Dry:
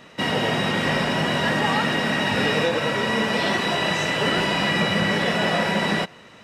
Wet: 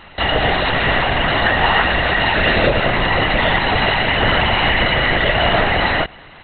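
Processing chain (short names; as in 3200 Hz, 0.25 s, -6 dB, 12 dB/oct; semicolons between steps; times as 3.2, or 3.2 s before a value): steep high-pass 390 Hz; LPC vocoder at 8 kHz whisper; gain +8 dB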